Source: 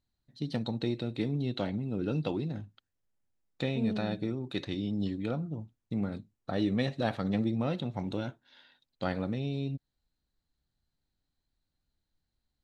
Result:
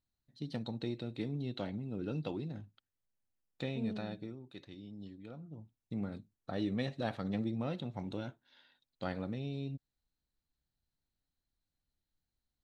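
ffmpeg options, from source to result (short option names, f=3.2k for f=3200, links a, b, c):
-af "volume=3.5dB,afade=t=out:st=3.86:d=0.64:silence=0.334965,afade=t=in:st=5.34:d=0.59:silence=0.316228"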